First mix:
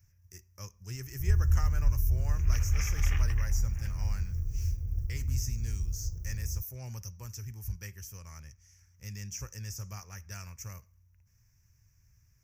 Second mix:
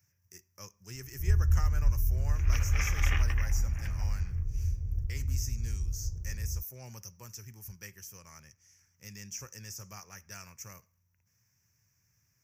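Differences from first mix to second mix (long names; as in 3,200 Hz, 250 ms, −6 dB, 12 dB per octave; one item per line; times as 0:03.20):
speech: add high-pass filter 170 Hz
first sound: add low-pass filter 1,800 Hz 6 dB per octave
second sound +6.5 dB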